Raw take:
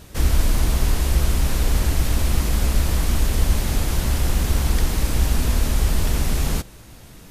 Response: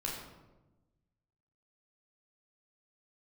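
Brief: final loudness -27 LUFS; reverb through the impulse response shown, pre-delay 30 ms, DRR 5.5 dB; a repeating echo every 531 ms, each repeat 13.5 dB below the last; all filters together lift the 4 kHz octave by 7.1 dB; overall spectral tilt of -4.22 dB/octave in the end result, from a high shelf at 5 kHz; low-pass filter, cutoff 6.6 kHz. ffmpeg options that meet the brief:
-filter_complex "[0:a]lowpass=6600,equalizer=f=4000:t=o:g=6.5,highshelf=f=5000:g=6.5,aecho=1:1:531|1062:0.211|0.0444,asplit=2[s0][s1];[1:a]atrim=start_sample=2205,adelay=30[s2];[s1][s2]afir=irnorm=-1:irlink=0,volume=0.398[s3];[s0][s3]amix=inputs=2:normalize=0,volume=0.398"

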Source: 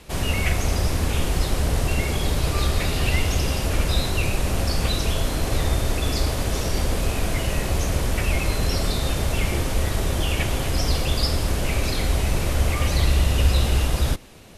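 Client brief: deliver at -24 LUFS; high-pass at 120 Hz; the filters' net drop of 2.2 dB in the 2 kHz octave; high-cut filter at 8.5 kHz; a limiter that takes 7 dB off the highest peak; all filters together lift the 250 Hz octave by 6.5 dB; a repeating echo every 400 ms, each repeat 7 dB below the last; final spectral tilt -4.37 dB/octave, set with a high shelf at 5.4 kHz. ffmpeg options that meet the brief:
-af "highpass=120,lowpass=8500,equalizer=f=250:t=o:g=9,equalizer=f=2000:t=o:g=-4,highshelf=f=5400:g=6,alimiter=limit=0.141:level=0:latency=1,aecho=1:1:400|800|1200|1600|2000:0.447|0.201|0.0905|0.0407|0.0183,volume=1.19"

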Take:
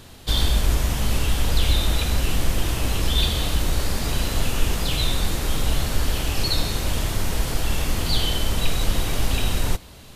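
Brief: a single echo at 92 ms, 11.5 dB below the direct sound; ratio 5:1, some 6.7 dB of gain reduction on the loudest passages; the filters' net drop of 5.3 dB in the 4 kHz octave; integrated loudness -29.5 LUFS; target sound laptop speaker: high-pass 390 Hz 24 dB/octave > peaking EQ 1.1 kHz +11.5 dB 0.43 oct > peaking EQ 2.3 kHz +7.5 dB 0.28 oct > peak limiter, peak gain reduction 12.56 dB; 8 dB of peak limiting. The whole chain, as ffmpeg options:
-af "equalizer=f=4000:t=o:g=-7.5,acompressor=threshold=0.1:ratio=5,alimiter=limit=0.0944:level=0:latency=1,highpass=f=390:w=0.5412,highpass=f=390:w=1.3066,equalizer=f=1100:t=o:w=0.43:g=11.5,equalizer=f=2300:t=o:w=0.28:g=7.5,aecho=1:1:92:0.266,volume=3.98,alimiter=limit=0.0841:level=0:latency=1"

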